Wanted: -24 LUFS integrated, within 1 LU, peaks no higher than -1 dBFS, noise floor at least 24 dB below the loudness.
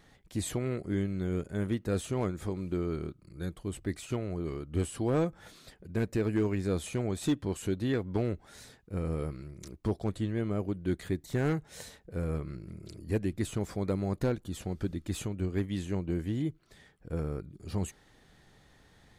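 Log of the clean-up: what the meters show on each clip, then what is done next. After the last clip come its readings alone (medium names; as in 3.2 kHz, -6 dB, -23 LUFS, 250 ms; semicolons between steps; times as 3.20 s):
clipped samples 0.3%; clipping level -21.0 dBFS; loudness -33.5 LUFS; peak level -21.0 dBFS; loudness target -24.0 LUFS
-> clip repair -21 dBFS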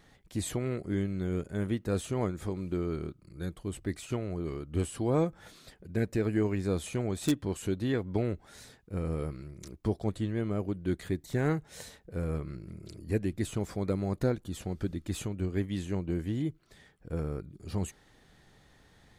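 clipped samples 0.0%; loudness -33.5 LUFS; peak level -12.0 dBFS; loudness target -24.0 LUFS
-> trim +9.5 dB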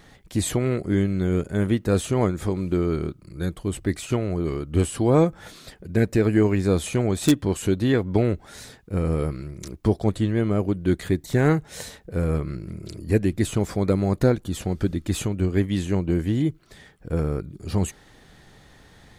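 loudness -24.0 LUFS; peak level -2.5 dBFS; noise floor -52 dBFS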